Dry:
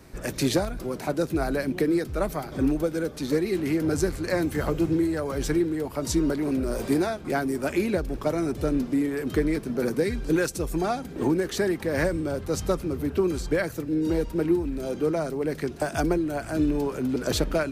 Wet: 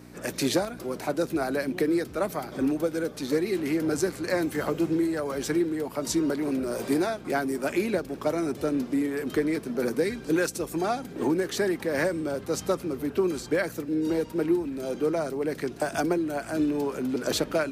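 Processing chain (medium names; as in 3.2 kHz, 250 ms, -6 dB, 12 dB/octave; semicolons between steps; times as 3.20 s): hum 60 Hz, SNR 13 dB; Bessel high-pass 220 Hz, order 2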